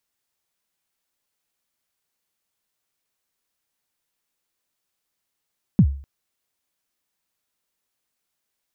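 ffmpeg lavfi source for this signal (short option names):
-f lavfi -i "aevalsrc='0.447*pow(10,-3*t/0.44)*sin(2*PI*(230*0.068/log(69/230)*(exp(log(69/230)*min(t,0.068)/0.068)-1)+69*max(t-0.068,0)))':d=0.25:s=44100"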